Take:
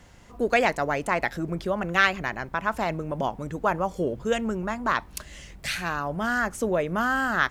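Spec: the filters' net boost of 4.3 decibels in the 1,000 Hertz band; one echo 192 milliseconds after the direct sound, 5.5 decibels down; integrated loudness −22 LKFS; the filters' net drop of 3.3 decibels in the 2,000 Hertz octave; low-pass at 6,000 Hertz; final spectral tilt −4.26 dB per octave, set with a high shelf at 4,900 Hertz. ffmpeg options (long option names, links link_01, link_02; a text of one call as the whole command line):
ffmpeg -i in.wav -af "lowpass=6000,equalizer=frequency=1000:width_type=o:gain=8,equalizer=frequency=2000:width_type=o:gain=-7,highshelf=frequency=4900:gain=-8.5,aecho=1:1:192:0.531,volume=2dB" out.wav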